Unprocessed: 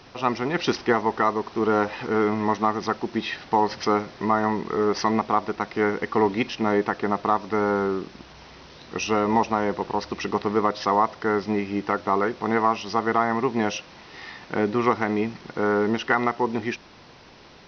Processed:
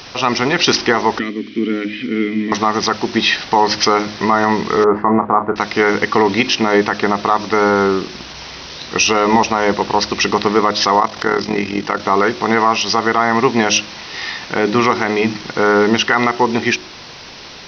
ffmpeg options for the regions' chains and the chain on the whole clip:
ffmpeg -i in.wav -filter_complex "[0:a]asettb=1/sr,asplit=3[link_01][link_02][link_03];[link_01]atrim=end=1.194[link_04];[link_02]atrim=start=1.19:end=2.52,asetpts=PTS-STARTPTS,afade=type=in:duration=0.004:curve=qsin,afade=type=out:start_time=1.326:duration=0.004:curve=qsin,lowshelf=frequency=330:gain=7.5,acontrast=41,asplit=3[link_05][link_06][link_07];[link_05]bandpass=frequency=270:width_type=q:width=8,volume=0dB[link_08];[link_06]bandpass=frequency=2290:width_type=q:width=8,volume=-6dB[link_09];[link_07]bandpass=frequency=3010:width_type=q:width=8,volume=-9dB[link_10];[link_08][link_09][link_10]amix=inputs=3:normalize=0[link_11];[link_03]atrim=start=2.516[link_12];[link_04][link_11]acrossfade=duration=0.004:curve1=hsin:curve2=qsin[link_13];[link_13][link_12]acrossfade=duration=0.004:curve1=qsin:curve2=hsin,asettb=1/sr,asplit=3[link_14][link_15][link_16];[link_14]atrim=end=4.844[link_17];[link_15]atrim=start=4.84:end=5.56,asetpts=PTS-STARTPTS,afade=type=in:duration=0.004:curve=qsin,afade=type=out:start_time=0.716:duration=0.004:curve=qsin,lowpass=frequency=1400:width=0.5412,lowpass=frequency=1400:width=1.3066,agate=range=-33dB:threshold=-37dB:ratio=3:release=100:detection=peak,asplit=2[link_18][link_19];[link_19]adelay=33,volume=-11dB[link_20];[link_18][link_20]amix=inputs=2:normalize=0,atrim=end_sample=31752[link_21];[link_16]atrim=start=5.556[link_22];[link_17][link_21]acrossfade=duration=0.004:curve1=hsin:curve2=qsin[link_23];[link_23][link_22]acrossfade=duration=0.004:curve1=qsin:curve2=hsin,asettb=1/sr,asplit=3[link_24][link_25][link_26];[link_24]atrim=end=11.004[link_27];[link_25]atrim=start=11:end=12,asetpts=PTS-STARTPTS,afade=type=in:duration=0.004:curve=qsin,afade=type=out:start_time=0.996:duration=0.004:curve=qsin,tremolo=f=41:d=0.71,acompressor=mode=upward:threshold=-32dB:ratio=2.5:attack=3.2:release=140:knee=2.83:detection=peak[link_28];[link_26]atrim=start=11.996[link_29];[link_27][link_28]acrossfade=duration=0.004:curve1=hsin:curve2=qsin[link_30];[link_30][link_29]acrossfade=duration=0.004:curve1=qsin:curve2=hsin,highshelf=frequency=2200:gain=11.5,bandreject=frequency=52.58:width_type=h:width=4,bandreject=frequency=105.16:width_type=h:width=4,bandreject=frequency=157.74:width_type=h:width=4,bandreject=frequency=210.32:width_type=h:width=4,bandreject=frequency=262.9:width_type=h:width=4,bandreject=frequency=315.48:width_type=h:width=4,bandreject=frequency=368.06:width_type=h:width=4,alimiter=level_in=10.5dB:limit=-1dB:release=50:level=0:latency=1,volume=-1dB" out.wav

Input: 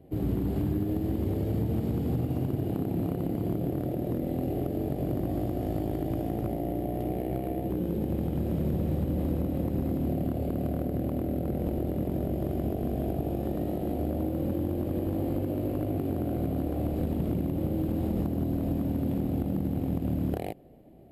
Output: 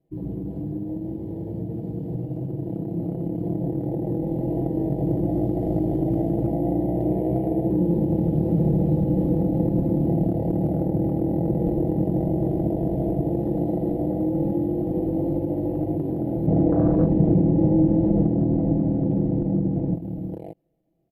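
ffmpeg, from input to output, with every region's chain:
ffmpeg -i in.wav -filter_complex "[0:a]asettb=1/sr,asplit=3[link_01][link_02][link_03];[link_01]atrim=end=16.474[link_04];[link_02]atrim=start=16.47:end=19.95,asetpts=PTS-STARTPTS,afade=type=in:duration=0.004:curve=qsin,afade=type=out:start_time=3.476:duration=0.004:curve=qsin,lowpass=2500,acontrast=89[link_05];[link_03]atrim=start=19.946[link_06];[link_04][link_05]acrossfade=duration=0.004:curve1=hsin:curve2=qsin[link_07];[link_07][link_06]acrossfade=duration=0.004:curve1=qsin:curve2=hsin,afwtdn=0.0355,aecho=1:1:6.1:0.73,dynaudnorm=framelen=740:gausssize=11:maxgain=10dB,volume=-3.5dB" out.wav

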